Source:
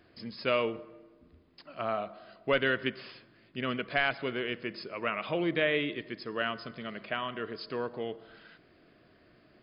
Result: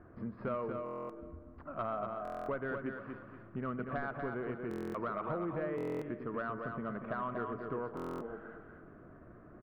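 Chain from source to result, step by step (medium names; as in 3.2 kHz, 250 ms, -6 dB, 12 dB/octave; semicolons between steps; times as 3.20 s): tilt EQ -2.5 dB/octave; compression 4:1, threshold -38 dBFS, peak gain reduction 15 dB; four-pole ladder low-pass 1.5 kHz, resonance 50%; saturation -35 dBFS, distortion -24 dB; feedback delay 238 ms, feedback 31%, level -5.5 dB; buffer glitch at 0.84/2.23/4.69/5.76/7.95 s, samples 1024, times 10; trim +10 dB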